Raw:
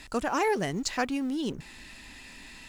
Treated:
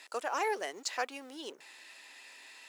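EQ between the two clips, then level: HPF 430 Hz 24 dB/oct; -4.5 dB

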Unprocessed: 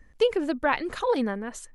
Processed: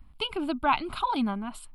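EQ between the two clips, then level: fixed phaser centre 1800 Hz, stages 6; +3.5 dB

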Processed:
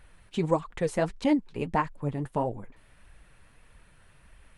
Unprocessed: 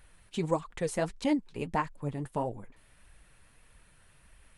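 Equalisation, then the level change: high shelf 4600 Hz -8.5 dB; +4.0 dB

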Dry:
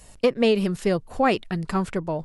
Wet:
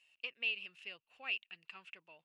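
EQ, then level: band-pass 2700 Hz, Q 13; 0.0 dB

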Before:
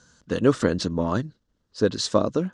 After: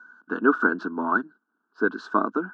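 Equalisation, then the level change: HPF 200 Hz 24 dB/oct; synth low-pass 1500 Hz, resonance Q 14; fixed phaser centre 540 Hz, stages 6; 0.0 dB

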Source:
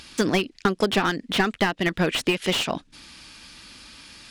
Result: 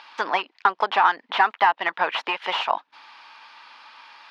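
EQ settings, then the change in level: resonant high-pass 910 Hz, resonance Q 4.1; air absorption 280 m; +2.0 dB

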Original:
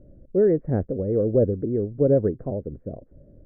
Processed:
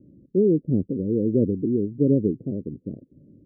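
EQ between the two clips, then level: HPF 180 Hz 12 dB/oct; inverse Chebyshev low-pass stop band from 1500 Hz, stop band 70 dB; +6.5 dB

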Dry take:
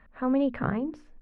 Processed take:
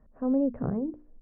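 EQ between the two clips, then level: Chebyshev low-pass 520 Hz, order 2; 0.0 dB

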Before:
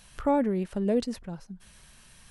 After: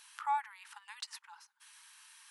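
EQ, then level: brick-wall FIR high-pass 810 Hz; -1.5 dB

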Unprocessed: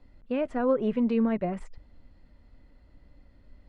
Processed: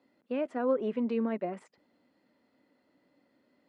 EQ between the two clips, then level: ladder high-pass 200 Hz, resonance 20%; +1.0 dB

